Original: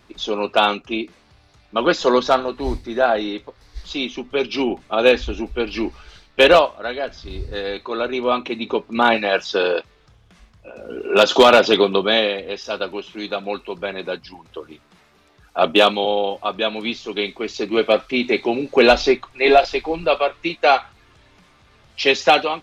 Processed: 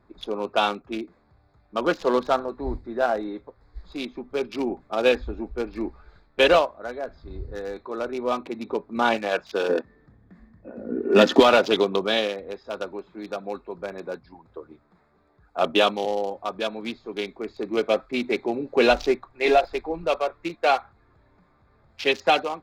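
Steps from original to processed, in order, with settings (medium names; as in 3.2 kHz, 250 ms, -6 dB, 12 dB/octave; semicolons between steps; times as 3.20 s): local Wiener filter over 15 samples; 9.69–11.40 s: small resonant body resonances 240/1800 Hz, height 16 dB, ringing for 30 ms; trim -5.5 dB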